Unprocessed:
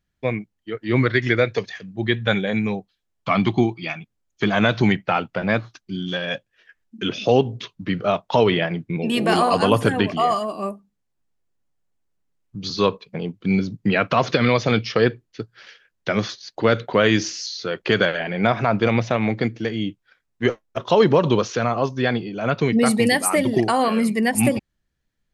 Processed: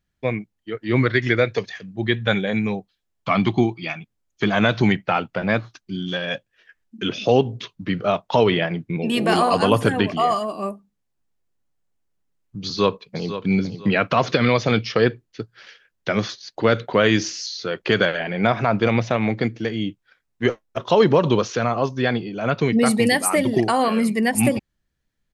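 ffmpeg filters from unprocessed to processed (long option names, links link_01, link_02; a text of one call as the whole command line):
ffmpeg -i in.wav -filter_complex "[0:a]asplit=2[link_01][link_02];[link_02]afade=type=in:start_time=12.65:duration=0.01,afade=type=out:start_time=13.32:duration=0.01,aecho=0:1:500|1000|1500:0.281838|0.0845515|0.0253654[link_03];[link_01][link_03]amix=inputs=2:normalize=0" out.wav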